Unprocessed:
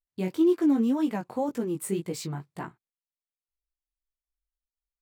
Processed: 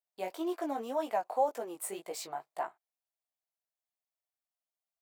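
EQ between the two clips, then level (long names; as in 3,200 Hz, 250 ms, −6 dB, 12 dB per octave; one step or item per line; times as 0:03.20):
high-pass with resonance 670 Hz, resonance Q 4.9
high-shelf EQ 10,000 Hz +4.5 dB
−4.5 dB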